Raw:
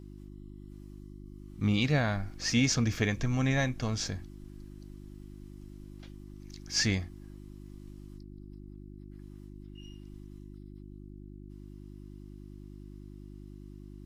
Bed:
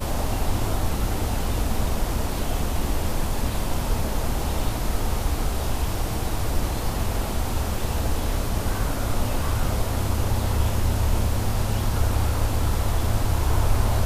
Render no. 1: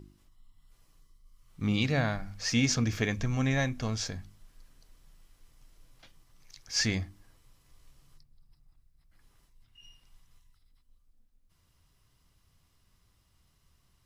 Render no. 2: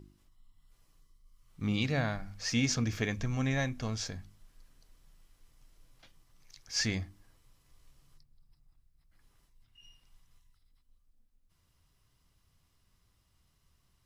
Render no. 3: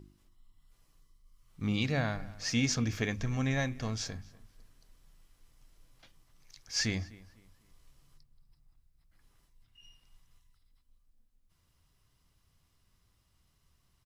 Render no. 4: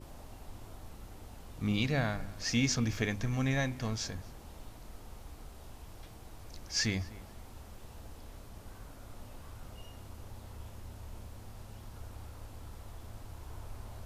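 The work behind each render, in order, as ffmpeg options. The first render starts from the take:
-af "bandreject=f=50:t=h:w=4,bandreject=f=100:t=h:w=4,bandreject=f=150:t=h:w=4,bandreject=f=200:t=h:w=4,bandreject=f=250:t=h:w=4,bandreject=f=300:t=h:w=4,bandreject=f=350:t=h:w=4"
-af "volume=-3dB"
-filter_complex "[0:a]asplit=2[a][b];[b]adelay=249,lowpass=f=3.4k:p=1,volume=-20.5dB,asplit=2[c][d];[d]adelay=249,lowpass=f=3.4k:p=1,volume=0.33,asplit=2[e][f];[f]adelay=249,lowpass=f=3.4k:p=1,volume=0.33[g];[a][c][e][g]amix=inputs=4:normalize=0"
-filter_complex "[1:a]volume=-24.5dB[a];[0:a][a]amix=inputs=2:normalize=0"

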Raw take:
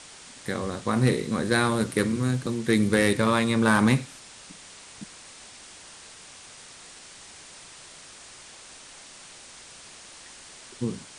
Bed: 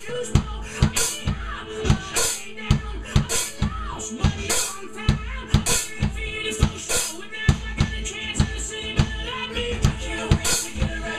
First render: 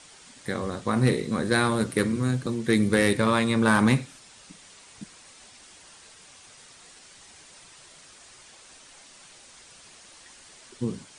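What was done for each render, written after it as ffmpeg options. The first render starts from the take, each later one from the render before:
-af "afftdn=nr=6:nf=-47"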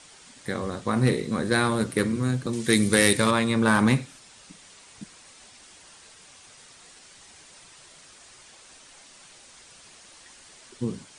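-filter_complex "[0:a]asettb=1/sr,asplit=3[a][b][c];[a]atrim=end=2.534[d];[b]atrim=start=2.53:end=3.31,asetpts=PTS-STARTPTS,afade=t=in:d=0.004:c=qsin,afade=t=out:st=0.776:d=0.004:c=qsin,highshelf=f=3.2k:g=12[e];[c]atrim=start=3.306[f];[d][e]acrossfade=d=0.004:c1=hsin:c2=qsin[g];[g][f]acrossfade=d=0.004:c1=qsin:c2=hsin"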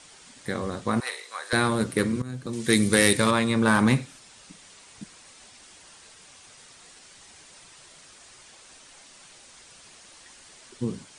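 -filter_complex "[0:a]asettb=1/sr,asplit=3[a][b][c];[a]atrim=end=1.004[d];[b]atrim=start=1:end=1.53,asetpts=PTS-STARTPTS,afade=t=in:d=0.004:c=qsin,afade=t=out:st=0.526:d=0.004:c=qsin,highpass=f=770:w=0.5412,highpass=f=770:w=1.3066[e];[c]atrim=start=1.526[f];[d][e]acrossfade=d=0.004:c1=hsin:c2=qsin[g];[g][f]acrossfade=d=0.004:c1=qsin:c2=hsin,asplit=2[h][i];[h]atrim=end=2.22,asetpts=PTS-STARTPTS,afade=t=out:st=2.216:d=0.004:c=hsin:silence=0.158489[j];[i]atrim=start=2.22,asetpts=PTS-STARTPTS,afade=t=in:d=0.49:silence=0.158489[k];[j][k]concat=n=2:v=0:a=1"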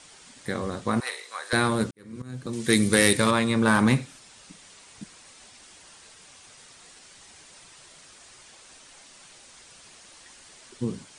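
-filter_complex "[0:a]asplit=2[a][b];[a]atrim=end=1.91,asetpts=PTS-STARTPTS,afade=t=out:st=1.906:d=0.004:c=hsin[c];[b]atrim=start=1.91,asetpts=PTS-STARTPTS,afade=t=in:d=0.47:c=qua[d];[c][d]concat=n=2:v=0:a=1"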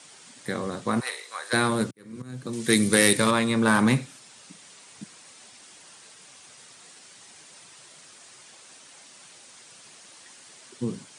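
-af "highpass=f=110:w=0.5412,highpass=f=110:w=1.3066,highshelf=f=11k:g=5.5"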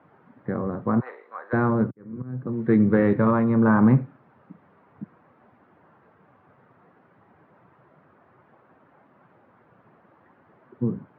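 -af "lowpass=f=1.4k:w=0.5412,lowpass=f=1.4k:w=1.3066,lowshelf=f=250:g=8"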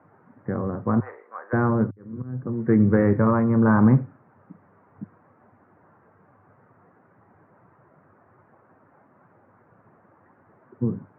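-af "lowpass=f=2k:w=0.5412,lowpass=f=2k:w=1.3066,equalizer=f=100:t=o:w=0.24:g=8.5"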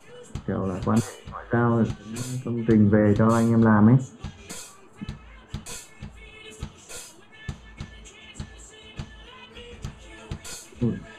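-filter_complex "[1:a]volume=-16.5dB[a];[0:a][a]amix=inputs=2:normalize=0"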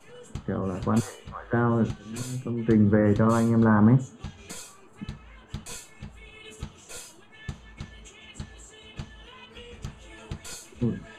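-af "volume=-2dB"

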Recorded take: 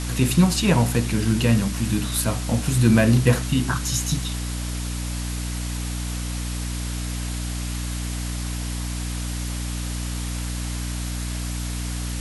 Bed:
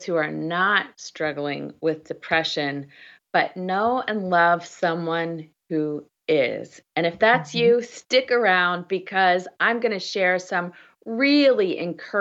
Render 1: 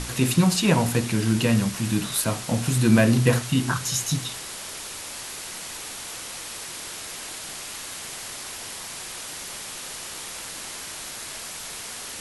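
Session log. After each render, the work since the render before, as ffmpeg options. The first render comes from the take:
-af "bandreject=f=60:t=h:w=6,bandreject=f=120:t=h:w=6,bandreject=f=180:t=h:w=6,bandreject=f=240:t=h:w=6,bandreject=f=300:t=h:w=6"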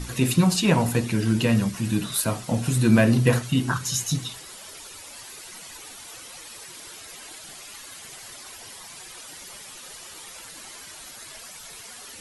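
-af "afftdn=nr=11:nf=-37"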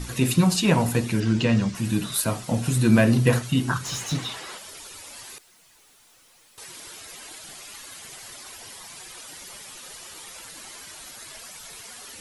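-filter_complex "[0:a]asettb=1/sr,asplit=3[a][b][c];[a]atrim=end=1.204[d];[b]atrim=start=1.2:end=1.75,asetpts=PTS-STARTPTS,afade=t=in:d=0.004:c=qsin,afade=t=out:st=0.546:d=0.004:c=qsin,lowpass=f=7.1k:w=0.5412,lowpass=f=7.1k:w=1.3066[e];[c]atrim=start=1.746[f];[d][e]acrossfade=d=0.004:c1=hsin:c2=qsin[g];[g][f]acrossfade=d=0.004:c1=qsin:c2=hsin,asplit=3[h][i][j];[h]afade=t=out:st=3.84:d=0.02[k];[i]asplit=2[l][m];[m]highpass=f=720:p=1,volume=19dB,asoftclip=type=tanh:threshold=-13.5dB[n];[l][n]amix=inputs=2:normalize=0,lowpass=f=1.5k:p=1,volume=-6dB,afade=t=in:st=3.84:d=0.02,afade=t=out:st=4.57:d=0.02[o];[j]afade=t=in:st=4.57:d=0.02[p];[k][o][p]amix=inputs=3:normalize=0,asettb=1/sr,asplit=3[q][r][s];[q]atrim=end=5.384[t];[r]atrim=start=5.38:end=6.58,asetpts=PTS-STARTPTS,afade=t=in:d=0.004:c=qsin,afade=t=out:st=1.196:d=0.004:c=qsin,aeval=exprs='(tanh(631*val(0)+0.15)-tanh(0.15))/631':c=same[u];[s]atrim=start=6.576[v];[t][u]acrossfade=d=0.004:c1=hsin:c2=qsin[w];[w][v]acrossfade=d=0.004:c1=qsin:c2=hsin"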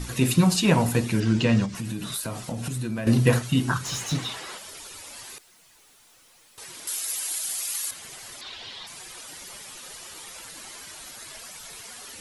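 -filter_complex "[0:a]asettb=1/sr,asplit=3[a][b][c];[a]atrim=end=1.654[d];[b]atrim=start=1.65:end=3.07,asetpts=PTS-STARTPTS,afade=t=in:d=0.004:c=qsin,afade=t=out:st=1.416:d=0.004:c=qsin,acompressor=threshold=-27dB:ratio=6:attack=3.2:release=140:knee=1:detection=peak[e];[c]atrim=start=3.066[f];[d][e]acrossfade=d=0.004:c1=hsin:c2=qsin[g];[g][f]acrossfade=d=0.004:c1=qsin:c2=hsin,asettb=1/sr,asplit=3[h][i][j];[h]atrim=end=6.874[k];[i]atrim=start=6.87:end=7.91,asetpts=PTS-STARTPTS,afade=t=in:d=0.004:c=qsin,afade=t=out:st=1.036:d=0.004:c=qsin,aemphasis=mode=production:type=riaa[l];[j]atrim=start=7.906[m];[k][l]acrossfade=d=0.004:c1=hsin:c2=qsin[n];[n][m]acrossfade=d=0.004:c1=qsin:c2=hsin,asettb=1/sr,asplit=3[o][p][q];[o]atrim=end=8.414[r];[p]atrim=start=8.41:end=8.87,asetpts=PTS-STARTPTS,afade=t=in:d=0.004:c=qsin,afade=t=out:st=0.456:d=0.004:c=qsin,lowpass=f=3.7k:t=q:w=3.4[s];[q]atrim=start=8.866[t];[r][s]acrossfade=d=0.004:c1=hsin:c2=qsin[u];[u][t]acrossfade=d=0.004:c1=qsin:c2=hsin"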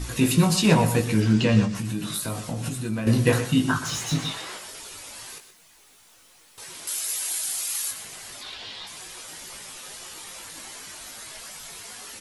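-filter_complex "[0:a]asplit=2[a][b];[b]adelay=19,volume=-5.5dB[c];[a][c]amix=inputs=2:normalize=0,aecho=1:1:123:0.266"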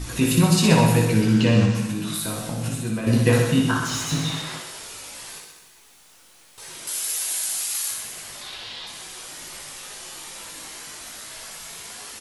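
-af "aecho=1:1:60|129|208.4|299.6|404.5:0.631|0.398|0.251|0.158|0.1"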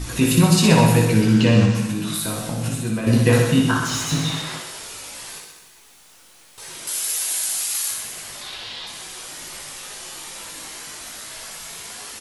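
-af "volume=2.5dB,alimiter=limit=-3dB:level=0:latency=1"

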